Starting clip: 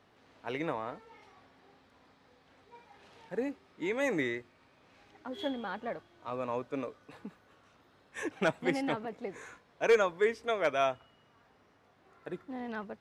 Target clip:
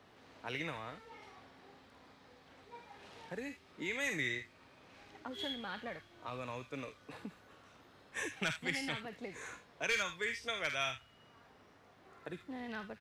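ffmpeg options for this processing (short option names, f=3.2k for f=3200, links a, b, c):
-filter_complex "[0:a]acrossover=split=140|1800[a][b][c];[b]acompressor=threshold=-46dB:ratio=6[d];[c]aecho=1:1:49|77:0.531|0.355[e];[a][d][e]amix=inputs=3:normalize=0,volume=2.5dB"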